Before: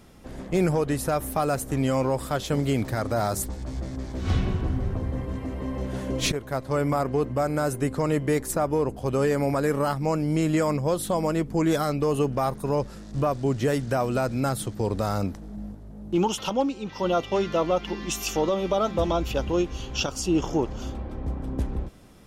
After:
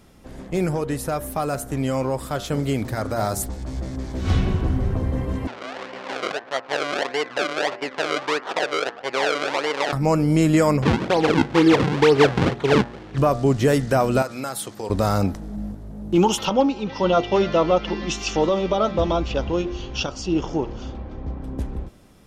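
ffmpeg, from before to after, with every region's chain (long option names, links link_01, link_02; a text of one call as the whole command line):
ffmpeg -i in.wav -filter_complex "[0:a]asettb=1/sr,asplit=3[link_01][link_02][link_03];[link_01]atrim=end=5.474[link_04];[link_02]atrim=start=5.47:end=9.93,asetpts=PTS-STARTPTS,afade=type=in:duration=0.004:curve=qsin,afade=type=out:start_time=4.456:duration=0.004:curve=qsin,acrusher=samples=34:mix=1:aa=0.000001:lfo=1:lforange=34:lforate=1.6,adynamicsmooth=sensitivity=6:basefreq=1200,highpass=620,lowpass=4900[link_05];[link_03]atrim=start=9.926[link_06];[link_04][link_05]acrossfade=duration=0.004:curve1=hsin:curve2=qsin[link_07];[link_07][link_06]acrossfade=duration=0.004:curve1=qsin:curve2=hsin,asettb=1/sr,asplit=3[link_08][link_09][link_10];[link_08]atrim=end=10.824[link_11];[link_09]atrim=start=10.82:end=13.18,asetpts=PTS-STARTPTS,afade=type=in:duration=0.004:curve=qsin,afade=type=out:start_time=2.356:duration=0.004:curve=qsin,aecho=1:1:2.4:0.71,atrim=end_sample=104076,acrusher=samples=42:mix=1:aa=0.000001:lfo=1:lforange=67.2:lforate=2.1,highpass=110,lowpass=4000[link_12];[link_10]atrim=start=13.176[link_13];[link_11][link_12]acrossfade=duration=0.004:curve1=hsin:curve2=qsin[link_14];[link_14][link_13]acrossfade=duration=0.004:curve1=qsin:curve2=hsin,asettb=1/sr,asplit=3[link_15][link_16][link_17];[link_15]atrim=end=14.224[link_18];[link_16]atrim=start=14.22:end=14.9,asetpts=PTS-STARTPTS,afade=type=in:duration=0.004:curve=qsin,afade=type=out:start_time=0.676:duration=0.004:curve=qsin,highpass=frequency=750:poles=1,acompressor=threshold=-31dB:ratio=3:attack=3.2:release=140:knee=1:detection=peak[link_19];[link_17]atrim=start=14.896[link_20];[link_18][link_19]acrossfade=duration=0.004:curve1=hsin:curve2=qsin[link_21];[link_21][link_20]acrossfade=duration=0.004:curve1=qsin:curve2=hsin,asettb=1/sr,asplit=3[link_22][link_23][link_24];[link_22]atrim=end=16.454[link_25];[link_23]atrim=start=16.45:end=21.44,asetpts=PTS-STARTPTS,afade=type=in:duration=0.004:curve=qsin,afade=type=out:start_time=4.986:duration=0.004:curve=qsin,lowpass=frequency=5800:width=0.5412,lowpass=frequency=5800:width=1.3066,aecho=1:1:310:0.0668,atrim=end_sample=220059[link_26];[link_24]atrim=start=21.436[link_27];[link_25][link_26]acrossfade=duration=0.004:curve1=hsin:curve2=qsin[link_28];[link_28][link_27]acrossfade=duration=0.004:curve1=qsin:curve2=hsin,bandreject=frequency=117.9:width_type=h:width=4,bandreject=frequency=235.8:width_type=h:width=4,bandreject=frequency=353.7:width_type=h:width=4,bandreject=frequency=471.6:width_type=h:width=4,bandreject=frequency=589.5:width_type=h:width=4,bandreject=frequency=707.4:width_type=h:width=4,bandreject=frequency=825.3:width_type=h:width=4,bandreject=frequency=943.2:width_type=h:width=4,bandreject=frequency=1061.1:width_type=h:width=4,bandreject=frequency=1179:width_type=h:width=4,bandreject=frequency=1296.9:width_type=h:width=4,bandreject=frequency=1414.8:width_type=h:width=4,bandreject=frequency=1532.7:width_type=h:width=4,bandreject=frequency=1650.6:width_type=h:width=4,bandreject=frequency=1768.5:width_type=h:width=4,bandreject=frequency=1886.4:width_type=h:width=4,bandreject=frequency=2004.3:width_type=h:width=4,dynaudnorm=framelen=420:gausssize=21:maxgain=7.5dB" out.wav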